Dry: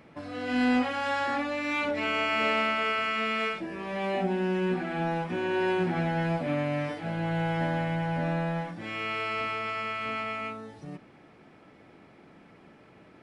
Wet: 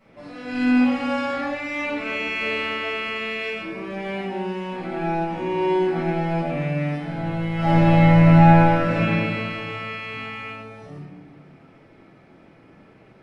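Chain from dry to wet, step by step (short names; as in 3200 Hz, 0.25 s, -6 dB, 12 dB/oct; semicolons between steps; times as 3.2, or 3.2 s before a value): 4.05–4.78 low shelf 320 Hz -9.5 dB; 7.54–8.91 reverb throw, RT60 2.2 s, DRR -11.5 dB; shoebox room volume 480 m³, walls mixed, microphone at 6.7 m; gain -11.5 dB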